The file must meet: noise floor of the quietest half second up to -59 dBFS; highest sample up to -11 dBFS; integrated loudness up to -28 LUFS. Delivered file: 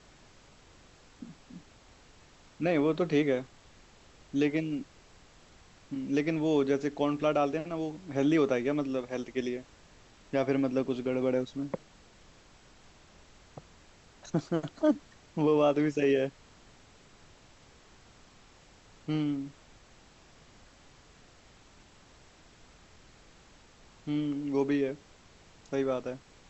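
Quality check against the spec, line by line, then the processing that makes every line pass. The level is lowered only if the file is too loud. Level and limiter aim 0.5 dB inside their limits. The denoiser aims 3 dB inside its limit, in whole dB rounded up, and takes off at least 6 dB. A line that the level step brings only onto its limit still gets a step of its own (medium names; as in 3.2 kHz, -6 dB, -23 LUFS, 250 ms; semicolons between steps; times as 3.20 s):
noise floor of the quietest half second -57 dBFS: fail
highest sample -14.5 dBFS: pass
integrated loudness -30.5 LUFS: pass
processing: noise reduction 6 dB, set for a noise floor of -57 dBFS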